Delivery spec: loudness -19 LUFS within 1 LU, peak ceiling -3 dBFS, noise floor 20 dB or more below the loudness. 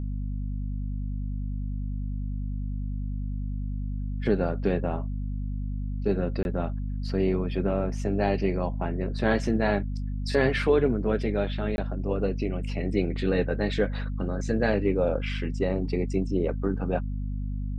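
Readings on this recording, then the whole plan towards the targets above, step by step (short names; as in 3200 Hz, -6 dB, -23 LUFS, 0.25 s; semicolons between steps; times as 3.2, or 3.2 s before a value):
dropouts 2; longest dropout 21 ms; hum 50 Hz; harmonics up to 250 Hz; hum level -28 dBFS; loudness -28.5 LUFS; peak -10.0 dBFS; loudness target -19.0 LUFS
-> interpolate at 6.43/11.76, 21 ms; notches 50/100/150/200/250 Hz; gain +9.5 dB; limiter -3 dBFS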